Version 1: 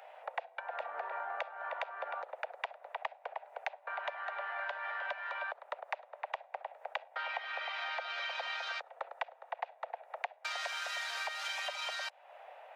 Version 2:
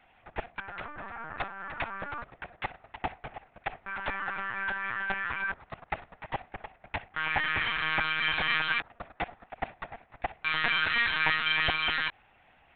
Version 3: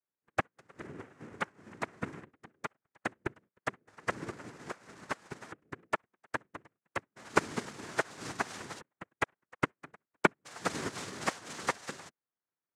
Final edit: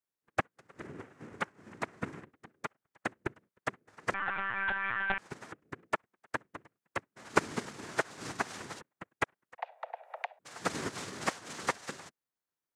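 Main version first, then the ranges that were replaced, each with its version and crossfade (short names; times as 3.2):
3
4.14–5.18 from 2
9.58–10.39 from 1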